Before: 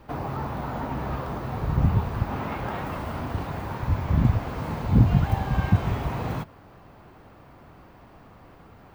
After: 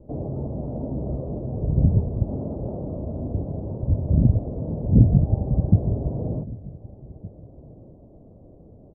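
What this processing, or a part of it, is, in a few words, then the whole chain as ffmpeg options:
under water: -filter_complex "[0:a]asettb=1/sr,asplit=3[s0][s1][s2];[s0]atrim=end=2.744[s3];[s1]atrim=start=2.74:end=3.2,asetpts=PTS-STARTPTS,afade=t=in:d=0.004:c=qsin,afade=t=out:st=0.456:d=0.004:c=qsin,bandreject=f=1600:w=10[s4];[s2]atrim=start=3.196[s5];[s3][s4]acrossfade=d=0.004:c1=hsin:c2=qsin[s6];[s6][s5]acrossfade=d=0.004:c1=qsin:c2=hsin,lowpass=f=480:w=0.5412,lowpass=f=480:w=1.3066,lowpass=1700,equalizer=f=610:t=o:w=0.42:g=9,asplit=2[s7][s8];[s8]adelay=1516,volume=0.0891,highshelf=f=4000:g=-34.1[s9];[s7][s9]amix=inputs=2:normalize=0,volume=1.41"

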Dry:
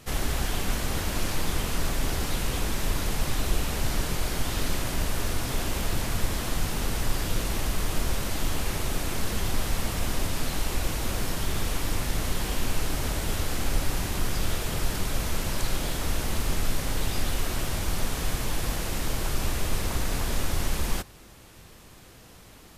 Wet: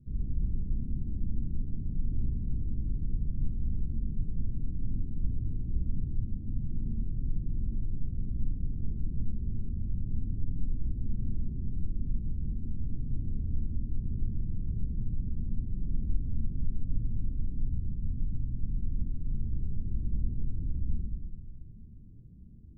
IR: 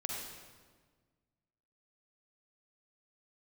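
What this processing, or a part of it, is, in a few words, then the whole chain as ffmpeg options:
club heard from the street: -filter_complex "[0:a]asettb=1/sr,asplit=3[s0][s1][s2];[s0]atrim=end=17.524[s3];[s1]atrim=start=17.52:end=19.34,asetpts=PTS-STARTPTS,afade=t=in:d=0.004:c=qsin,afade=t=out:st=1.816:d=0.004:c=qsin,equalizer=f=690:t=o:w=2.1:g=-5.5[s4];[s2]atrim=start=19.336[s5];[s3][s4]acrossfade=d=0.004:c1=hsin:c2=qsin[s6];[s6][s5]acrossfade=d=0.004:c1=qsin:c2=hsin,alimiter=limit=0.0891:level=0:latency=1:release=472,lowpass=f=230:w=0.5412,lowpass=f=230:w=1.3066[s7];[1:a]atrim=start_sample=2205[s8];[s7][s8]afir=irnorm=-1:irlink=0"

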